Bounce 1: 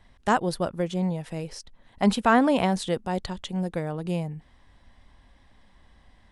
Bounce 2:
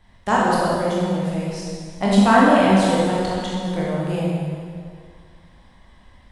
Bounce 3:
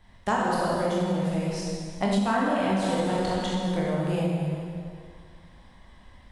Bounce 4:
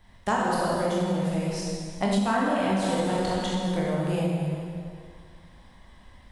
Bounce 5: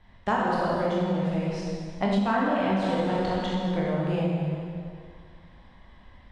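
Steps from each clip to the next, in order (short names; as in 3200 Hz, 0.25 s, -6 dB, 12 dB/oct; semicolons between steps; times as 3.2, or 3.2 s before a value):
reverb RT60 2.1 s, pre-delay 13 ms, DRR -6 dB
compressor 6:1, threshold -20 dBFS, peak gain reduction 11 dB; gain -1.5 dB
high shelf 8400 Hz +5 dB
LPF 3600 Hz 12 dB/oct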